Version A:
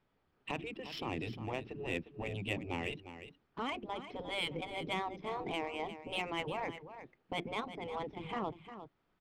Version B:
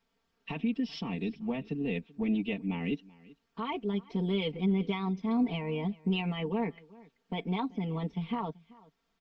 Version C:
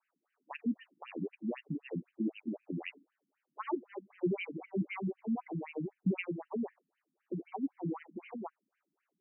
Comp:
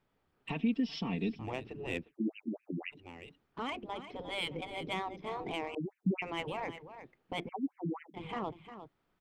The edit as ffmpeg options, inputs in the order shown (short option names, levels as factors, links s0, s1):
-filter_complex "[2:a]asplit=3[s0][s1][s2];[0:a]asplit=5[s3][s4][s5][s6][s7];[s3]atrim=end=0.502[s8];[1:a]atrim=start=0.498:end=1.392[s9];[s4]atrim=start=1.388:end=2.14[s10];[s0]atrim=start=1.98:end=3.07[s11];[s5]atrim=start=2.91:end=5.752[s12];[s1]atrim=start=5.748:end=6.222[s13];[s6]atrim=start=6.218:end=7.492[s14];[s2]atrim=start=7.488:end=8.142[s15];[s7]atrim=start=8.138[s16];[s8][s9]acrossfade=d=0.004:c1=hsin:c2=hsin[s17];[s17][s10]acrossfade=d=0.004:c1=hsin:c2=hsin[s18];[s18][s11]acrossfade=d=0.16:c1=tri:c2=tri[s19];[s19][s12]acrossfade=d=0.16:c1=tri:c2=tri[s20];[s20][s13]acrossfade=d=0.004:c1=hsin:c2=hsin[s21];[s21][s14]acrossfade=d=0.004:c1=hsin:c2=hsin[s22];[s22][s15]acrossfade=d=0.004:c1=hsin:c2=hsin[s23];[s23][s16]acrossfade=d=0.004:c1=hsin:c2=hsin"